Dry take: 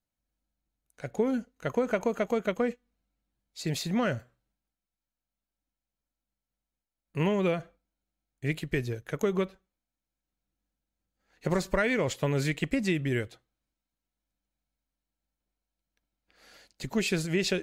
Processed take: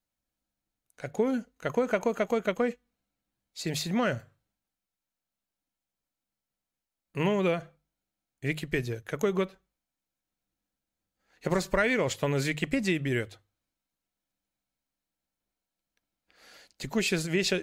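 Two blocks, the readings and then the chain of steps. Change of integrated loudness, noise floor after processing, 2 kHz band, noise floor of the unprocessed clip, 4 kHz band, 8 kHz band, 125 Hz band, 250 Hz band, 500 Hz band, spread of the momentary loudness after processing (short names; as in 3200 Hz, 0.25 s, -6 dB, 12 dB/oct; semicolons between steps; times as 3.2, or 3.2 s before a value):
+0.5 dB, under -85 dBFS, +2.0 dB, under -85 dBFS, +2.0 dB, +2.0 dB, -1.5 dB, -0.5 dB, +0.5 dB, 11 LU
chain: low shelf 400 Hz -3 dB; notches 50/100/150 Hz; gain +2 dB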